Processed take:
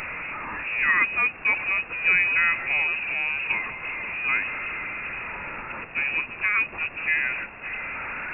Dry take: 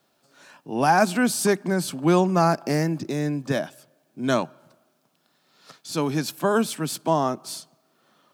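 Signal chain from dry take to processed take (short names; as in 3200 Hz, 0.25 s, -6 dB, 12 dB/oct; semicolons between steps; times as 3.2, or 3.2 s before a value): delta modulation 64 kbps, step -22 dBFS; low shelf 130 Hz +6.5 dB; inverted band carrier 2700 Hz; gain -3.5 dB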